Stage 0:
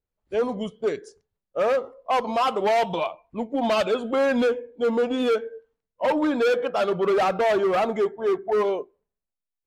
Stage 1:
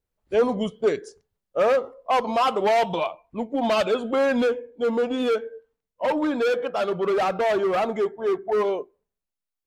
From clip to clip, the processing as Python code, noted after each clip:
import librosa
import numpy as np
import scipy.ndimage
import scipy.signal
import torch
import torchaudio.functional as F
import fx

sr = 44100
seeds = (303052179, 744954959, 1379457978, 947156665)

y = fx.rider(x, sr, range_db=4, speed_s=2.0)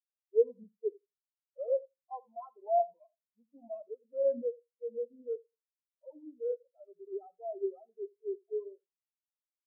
y = fx.echo_feedback(x, sr, ms=84, feedback_pct=43, wet_db=-7.0)
y = fx.spectral_expand(y, sr, expansion=4.0)
y = y * 10.0 ** (-4.5 / 20.0)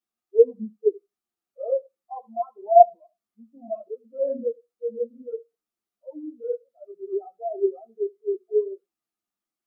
y = fx.small_body(x, sr, hz=(230.0, 330.0, 700.0, 1200.0), ring_ms=40, db=13)
y = fx.ensemble(y, sr)
y = y * 10.0 ** (6.5 / 20.0)